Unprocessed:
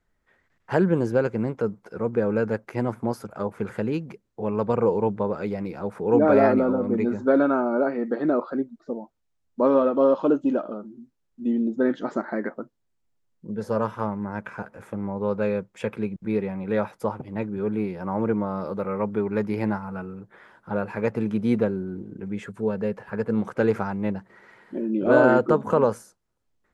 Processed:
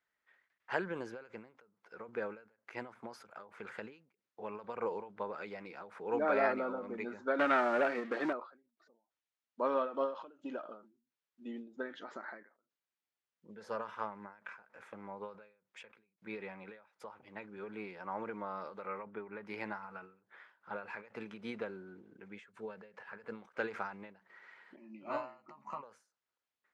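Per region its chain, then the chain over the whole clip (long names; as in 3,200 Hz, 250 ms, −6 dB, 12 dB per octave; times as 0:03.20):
0:07.39–0:08.33: leveller curve on the samples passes 2 + one half of a high-frequency compander decoder only
0:19.03–0:19.46: high-pass filter 43 Hz + high-frequency loss of the air 360 metres
0:24.76–0:25.83: phaser with its sweep stopped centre 2,300 Hz, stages 8 + double-tracking delay 14 ms −6.5 dB + expander for the loud parts, over −36 dBFS
whole clip: low-pass filter 2,400 Hz 12 dB per octave; first difference; every ending faded ahead of time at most 130 dB per second; level +9 dB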